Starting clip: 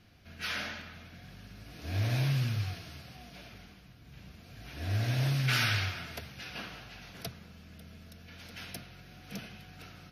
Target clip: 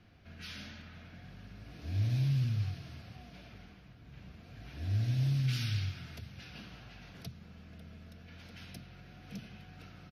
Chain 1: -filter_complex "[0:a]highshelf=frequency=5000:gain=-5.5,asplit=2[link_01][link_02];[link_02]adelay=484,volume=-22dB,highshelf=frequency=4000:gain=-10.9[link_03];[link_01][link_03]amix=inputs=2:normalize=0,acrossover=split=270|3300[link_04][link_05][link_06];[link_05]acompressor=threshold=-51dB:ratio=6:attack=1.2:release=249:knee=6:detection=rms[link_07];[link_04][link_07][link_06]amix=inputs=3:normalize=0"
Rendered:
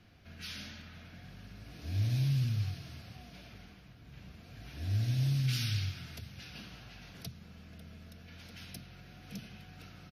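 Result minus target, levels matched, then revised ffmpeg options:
8,000 Hz band +5.5 dB
-filter_complex "[0:a]highshelf=frequency=5000:gain=-14,asplit=2[link_01][link_02];[link_02]adelay=484,volume=-22dB,highshelf=frequency=4000:gain=-10.9[link_03];[link_01][link_03]amix=inputs=2:normalize=0,acrossover=split=270|3300[link_04][link_05][link_06];[link_05]acompressor=threshold=-51dB:ratio=6:attack=1.2:release=249:knee=6:detection=rms[link_07];[link_04][link_07][link_06]amix=inputs=3:normalize=0"

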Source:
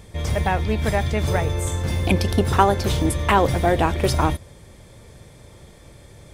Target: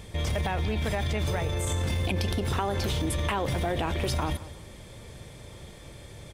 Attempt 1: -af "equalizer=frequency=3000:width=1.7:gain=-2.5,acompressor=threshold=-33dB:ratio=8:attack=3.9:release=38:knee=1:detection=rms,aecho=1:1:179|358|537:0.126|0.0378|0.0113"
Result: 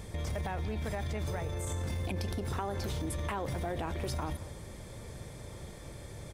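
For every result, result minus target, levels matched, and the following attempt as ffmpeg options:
downward compressor: peak gain reduction +6.5 dB; 4,000 Hz band −2.5 dB
-af "equalizer=frequency=3000:width=1.7:gain=-2.5,acompressor=threshold=-25dB:ratio=8:attack=3.9:release=38:knee=1:detection=rms,aecho=1:1:179|358|537:0.126|0.0378|0.0113"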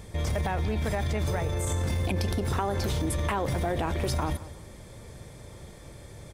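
4,000 Hz band −4.0 dB
-af "equalizer=frequency=3000:width=1.7:gain=4.5,acompressor=threshold=-25dB:ratio=8:attack=3.9:release=38:knee=1:detection=rms,aecho=1:1:179|358|537:0.126|0.0378|0.0113"

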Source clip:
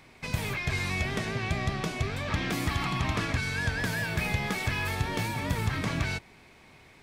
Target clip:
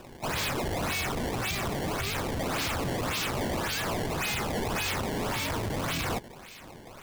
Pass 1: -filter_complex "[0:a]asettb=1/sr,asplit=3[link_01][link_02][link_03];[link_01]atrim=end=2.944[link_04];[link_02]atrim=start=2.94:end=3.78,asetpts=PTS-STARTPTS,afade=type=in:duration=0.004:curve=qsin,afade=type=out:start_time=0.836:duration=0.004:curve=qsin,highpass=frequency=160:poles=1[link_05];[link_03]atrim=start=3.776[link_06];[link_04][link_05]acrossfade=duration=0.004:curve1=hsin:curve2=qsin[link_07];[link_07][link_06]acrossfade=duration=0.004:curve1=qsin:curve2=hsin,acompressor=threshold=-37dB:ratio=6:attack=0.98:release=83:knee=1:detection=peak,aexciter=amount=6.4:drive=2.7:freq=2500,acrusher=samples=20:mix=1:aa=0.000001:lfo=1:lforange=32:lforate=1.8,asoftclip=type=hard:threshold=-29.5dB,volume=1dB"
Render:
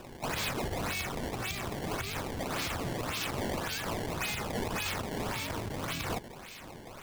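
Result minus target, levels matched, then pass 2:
downward compressor: peak gain reduction +9 dB
-filter_complex "[0:a]asettb=1/sr,asplit=3[link_01][link_02][link_03];[link_01]atrim=end=2.944[link_04];[link_02]atrim=start=2.94:end=3.78,asetpts=PTS-STARTPTS,afade=type=in:duration=0.004:curve=qsin,afade=type=out:start_time=0.836:duration=0.004:curve=qsin,highpass=frequency=160:poles=1[link_05];[link_03]atrim=start=3.776[link_06];[link_04][link_05]acrossfade=duration=0.004:curve1=hsin:curve2=qsin[link_07];[link_07][link_06]acrossfade=duration=0.004:curve1=qsin:curve2=hsin,acompressor=threshold=-26dB:ratio=6:attack=0.98:release=83:knee=1:detection=peak,aexciter=amount=6.4:drive=2.7:freq=2500,acrusher=samples=20:mix=1:aa=0.000001:lfo=1:lforange=32:lforate=1.8,asoftclip=type=hard:threshold=-29.5dB,volume=1dB"

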